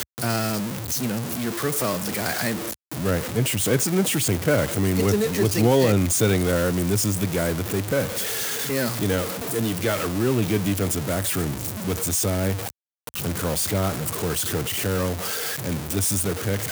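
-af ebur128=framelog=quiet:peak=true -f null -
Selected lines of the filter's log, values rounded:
Integrated loudness:
  I:         -23.2 LUFS
  Threshold: -33.3 LUFS
Loudness range:
  LRA:         4.6 LU
  Threshold: -43.1 LUFS
  LRA low:   -25.1 LUFS
  LRA high:  -20.5 LUFS
True peak:
  Peak:       -7.5 dBFS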